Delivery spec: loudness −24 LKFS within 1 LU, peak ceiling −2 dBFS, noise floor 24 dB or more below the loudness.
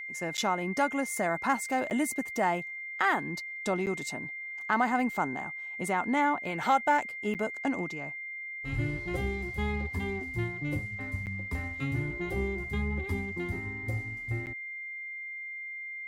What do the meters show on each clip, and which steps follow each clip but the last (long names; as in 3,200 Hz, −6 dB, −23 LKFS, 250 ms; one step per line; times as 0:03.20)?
number of dropouts 6; longest dropout 8.8 ms; interfering tone 2,100 Hz; level of the tone −37 dBFS; integrated loudness −31.5 LKFS; sample peak −13.0 dBFS; target loudness −24.0 LKFS
→ repair the gap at 0:00.37/0:01.90/0:03.86/0:07.34/0:11.26/0:14.46, 8.8 ms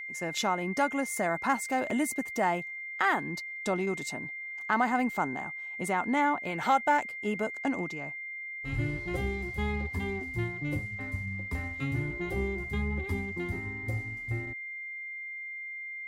number of dropouts 0; interfering tone 2,100 Hz; level of the tone −37 dBFS
→ notch filter 2,100 Hz, Q 30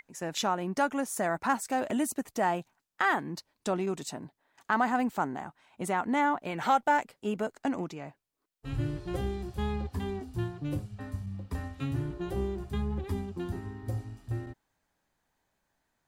interfering tone none found; integrated loudness −32.0 LKFS; sample peak −13.5 dBFS; target loudness −24.0 LKFS
→ level +8 dB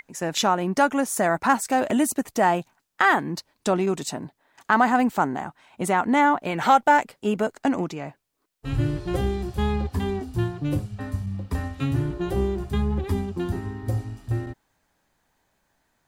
integrated loudness −24.0 LKFS; sample peak −5.5 dBFS; background noise floor −72 dBFS